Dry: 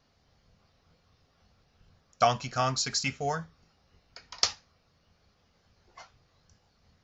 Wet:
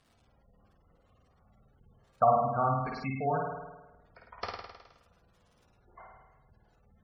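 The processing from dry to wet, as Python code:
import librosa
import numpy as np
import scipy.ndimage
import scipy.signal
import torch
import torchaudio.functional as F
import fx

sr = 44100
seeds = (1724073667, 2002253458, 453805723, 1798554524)

y = scipy.signal.sosfilt(scipy.signal.butter(2, 1500.0, 'lowpass', fs=sr, output='sos'), x)
y = fx.dmg_crackle(y, sr, seeds[0], per_s=370.0, level_db=-54.0)
y = fx.room_flutter(y, sr, wall_m=9.0, rt60_s=1.1)
y = fx.spec_gate(y, sr, threshold_db=-20, keep='strong')
y = F.gain(torch.from_numpy(y), -1.0).numpy()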